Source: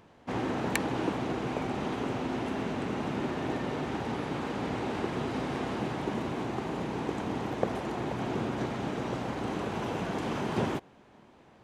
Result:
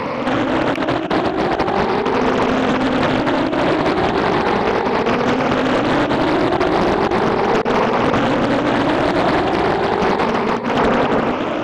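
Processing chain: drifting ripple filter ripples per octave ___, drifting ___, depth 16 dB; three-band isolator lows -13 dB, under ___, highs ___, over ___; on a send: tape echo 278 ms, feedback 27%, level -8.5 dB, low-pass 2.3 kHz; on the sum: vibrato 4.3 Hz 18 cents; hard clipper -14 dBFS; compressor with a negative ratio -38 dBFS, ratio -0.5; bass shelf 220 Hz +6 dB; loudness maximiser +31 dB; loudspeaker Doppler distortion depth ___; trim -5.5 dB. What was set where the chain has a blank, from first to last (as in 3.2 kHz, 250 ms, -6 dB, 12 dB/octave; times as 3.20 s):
0.96, +0.37 Hz, 250 Hz, -20 dB, 4.5 kHz, 0.89 ms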